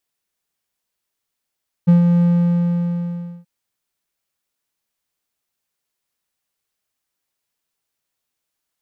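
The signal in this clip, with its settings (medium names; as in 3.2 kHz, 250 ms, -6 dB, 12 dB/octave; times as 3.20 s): ADSR triangle 173 Hz, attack 18 ms, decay 128 ms, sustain -4.5 dB, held 0.34 s, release 1240 ms -4.5 dBFS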